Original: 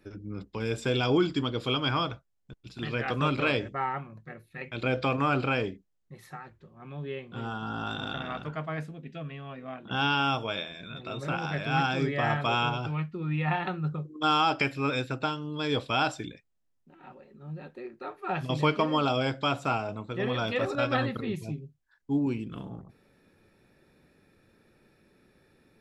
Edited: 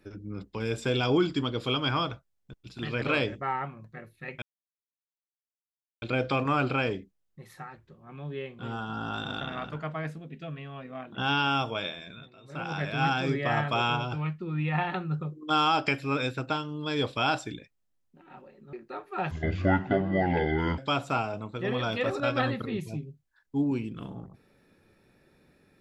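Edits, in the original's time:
3.02–3.35 cut
4.75 insert silence 1.60 s
10.76–11.48 dip -17.5 dB, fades 0.31 s
17.46–17.84 cut
18.42–19.33 speed 62%

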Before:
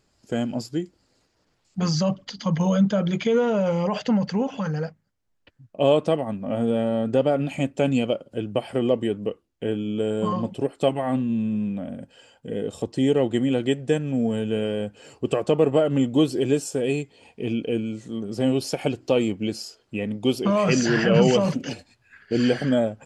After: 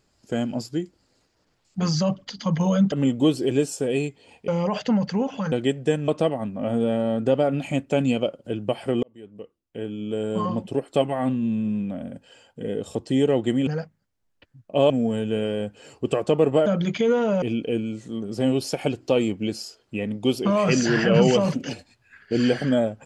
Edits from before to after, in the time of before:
2.92–3.68 swap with 15.86–17.42
4.72–5.95 swap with 13.54–14.1
8.9–10.41 fade in

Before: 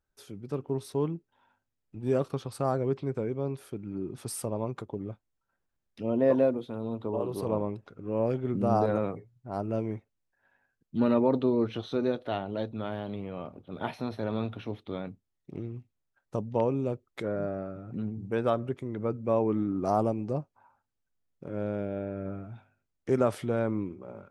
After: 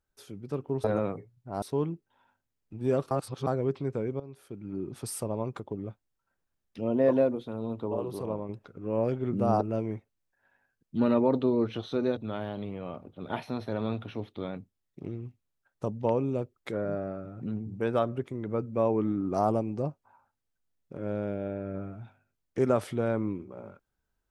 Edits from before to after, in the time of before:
2.33–2.69 reverse
3.42–4 fade in linear, from -17 dB
7.08–7.71 fade out, to -6.5 dB
8.83–9.61 move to 0.84
12.17–12.68 cut

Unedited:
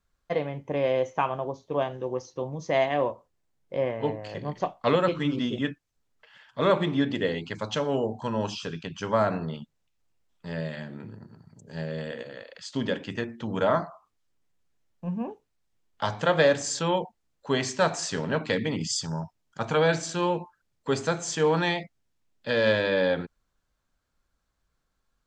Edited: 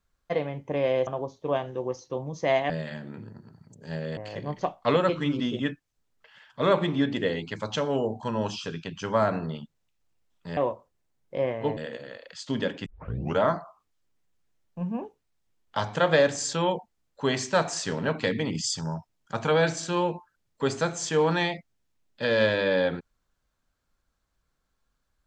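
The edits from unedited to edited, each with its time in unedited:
1.07–1.33 cut
2.96–4.16 swap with 10.56–12.03
13.12 tape start 0.52 s

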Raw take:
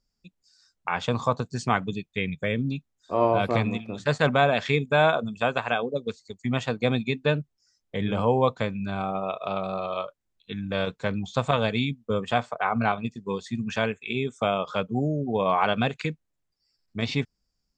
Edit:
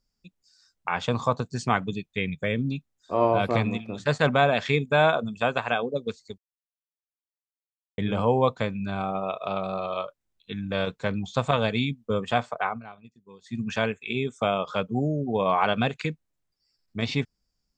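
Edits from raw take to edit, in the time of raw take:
6.38–7.98 mute
12.62–13.6 dip -19.5 dB, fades 0.19 s

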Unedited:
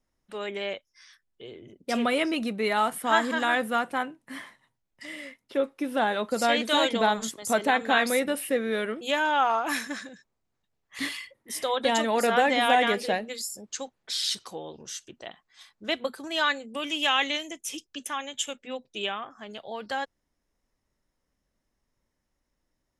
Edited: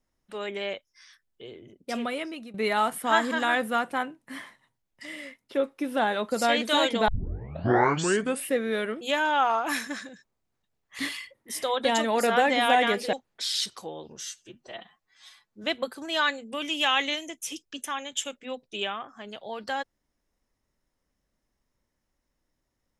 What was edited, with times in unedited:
1.47–2.54 fade out, to -16 dB
7.08 tape start 1.38 s
13.13–13.82 cut
14.92–15.86 stretch 1.5×

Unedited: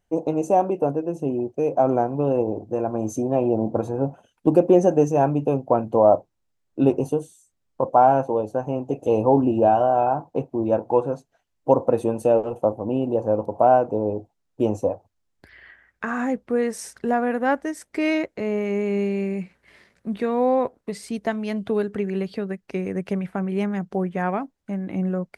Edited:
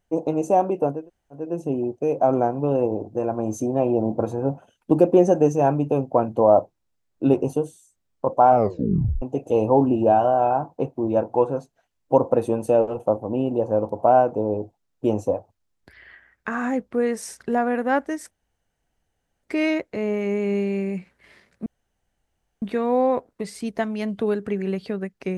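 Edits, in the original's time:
0.98 insert room tone 0.44 s, crossfade 0.24 s
8.05 tape stop 0.73 s
17.87 insert room tone 1.12 s
20.1 insert room tone 0.96 s

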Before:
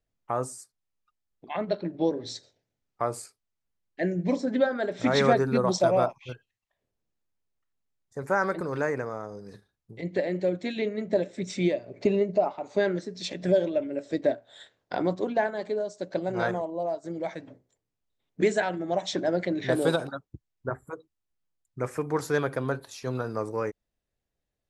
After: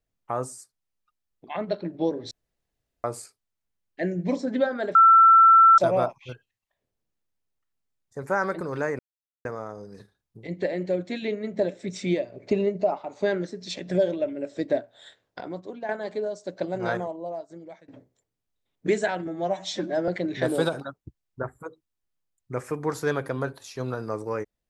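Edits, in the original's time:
2.31–3.04 room tone
4.95–5.78 bleep 1340 Hz -10.5 dBFS
8.99 insert silence 0.46 s
14.94–15.43 gain -9 dB
16.48–17.42 fade out, to -21 dB
18.81–19.35 stretch 1.5×

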